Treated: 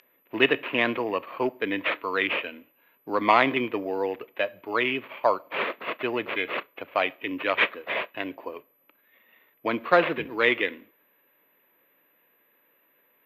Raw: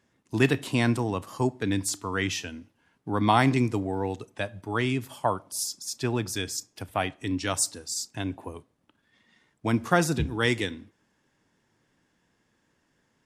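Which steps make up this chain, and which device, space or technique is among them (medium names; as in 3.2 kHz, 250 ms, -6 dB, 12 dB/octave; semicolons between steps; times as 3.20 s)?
toy sound module (decimation joined by straight lines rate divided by 8×; class-D stage that switches slowly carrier 12 kHz; cabinet simulation 520–4400 Hz, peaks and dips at 540 Hz +4 dB, 800 Hz -9 dB, 1.5 kHz -4 dB, 2.5 kHz +6 dB, 4 kHz -4 dB); trim +7.5 dB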